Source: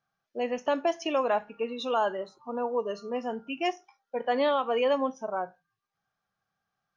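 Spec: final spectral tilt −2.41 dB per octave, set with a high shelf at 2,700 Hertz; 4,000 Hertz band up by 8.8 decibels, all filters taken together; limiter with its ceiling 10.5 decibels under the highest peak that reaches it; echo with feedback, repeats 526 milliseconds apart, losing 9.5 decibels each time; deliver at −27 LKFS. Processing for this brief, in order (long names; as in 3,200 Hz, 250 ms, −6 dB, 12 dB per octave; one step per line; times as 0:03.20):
high-shelf EQ 2,700 Hz +8.5 dB
parametric band 4,000 Hz +5.5 dB
brickwall limiter −24 dBFS
repeating echo 526 ms, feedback 33%, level −9.5 dB
level +6.5 dB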